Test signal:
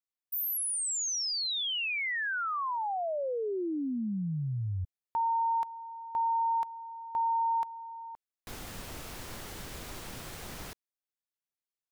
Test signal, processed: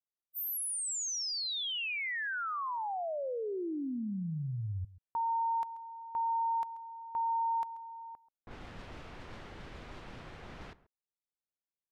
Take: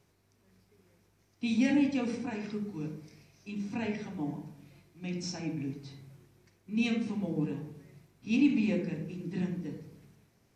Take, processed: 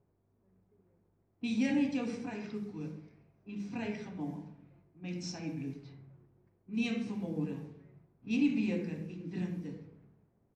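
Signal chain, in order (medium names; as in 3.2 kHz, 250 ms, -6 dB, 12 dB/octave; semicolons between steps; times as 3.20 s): echo from a far wall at 23 m, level -18 dB; level-controlled noise filter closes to 810 Hz, open at -31 dBFS; trim -3.5 dB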